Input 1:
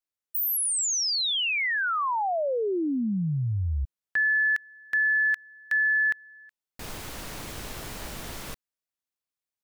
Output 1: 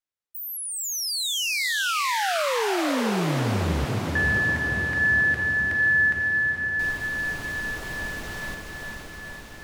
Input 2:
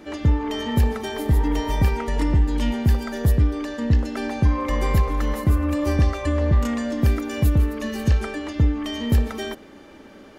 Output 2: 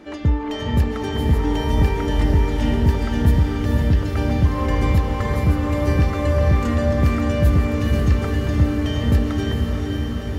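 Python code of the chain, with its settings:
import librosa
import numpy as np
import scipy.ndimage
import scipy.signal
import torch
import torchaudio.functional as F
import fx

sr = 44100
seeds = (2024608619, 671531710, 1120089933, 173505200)

p1 = fx.high_shelf(x, sr, hz=7700.0, db=-8.5)
y = p1 + fx.echo_diffused(p1, sr, ms=478, feedback_pct=73, wet_db=-3.5, dry=0)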